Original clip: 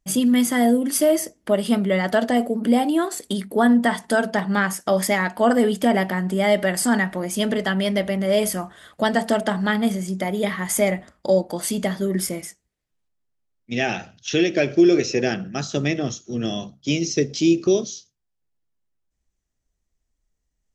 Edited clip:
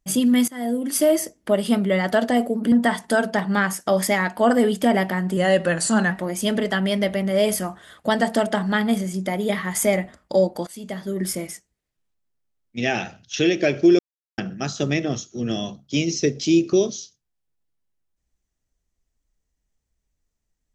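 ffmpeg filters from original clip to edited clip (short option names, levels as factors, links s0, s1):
-filter_complex "[0:a]asplit=8[s0][s1][s2][s3][s4][s5][s6][s7];[s0]atrim=end=0.48,asetpts=PTS-STARTPTS,afade=t=out:st=0.476:d=0.004:c=hsin:silence=0.0749894[s8];[s1]atrim=start=0.48:end=2.722,asetpts=PTS-STARTPTS,afade=t=in:d=0.54:silence=0.0749894[s9];[s2]atrim=start=3.718:end=6.374[s10];[s3]atrim=start=6.37:end=7.05,asetpts=PTS-STARTPTS,asetrate=40572,aresample=44100[s11];[s4]atrim=start=7.046:end=11.61,asetpts=PTS-STARTPTS,afade=t=out:st=4.56:d=0.004:c=hsin:silence=0.105925[s12];[s5]atrim=start=11.61:end=14.93,asetpts=PTS-STARTPTS,afade=t=in:d=0.75:silence=0.105925,afade=t=out:st=3.316:d=0.004:c=hsin[s13];[s6]atrim=start=14.93:end=15.32,asetpts=PTS-STARTPTS,volume=0[s14];[s7]atrim=start=15.32,asetpts=PTS-STARTPTS,afade=t=in:d=0.004:c=hsin[s15];[s8][s9]concat=n=2:v=0:a=1[s16];[s16][s10]acrossfade=d=0.004:c1=hsin:c2=hsin[s17];[s17][s11]acrossfade=d=0.004:c1=hsin:c2=hsin[s18];[s12][s13][s14][s15]concat=n=4:v=0:a=1[s19];[s18][s19]acrossfade=d=0.004:c1=hsin:c2=hsin"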